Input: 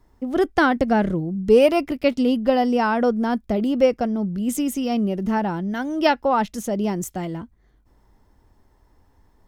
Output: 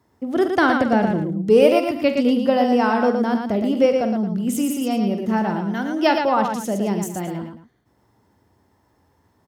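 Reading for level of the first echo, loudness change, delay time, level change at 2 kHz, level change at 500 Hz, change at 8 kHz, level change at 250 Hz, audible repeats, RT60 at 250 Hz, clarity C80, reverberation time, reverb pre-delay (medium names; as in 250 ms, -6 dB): -11.0 dB, +1.5 dB, 45 ms, +1.5 dB, +1.5 dB, +1.5 dB, +1.5 dB, 3, no reverb, no reverb, no reverb, no reverb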